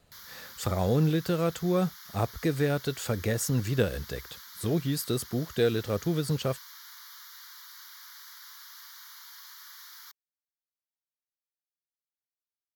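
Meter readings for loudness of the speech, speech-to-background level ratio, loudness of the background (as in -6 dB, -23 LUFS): -29.0 LUFS, 16.5 dB, -45.5 LUFS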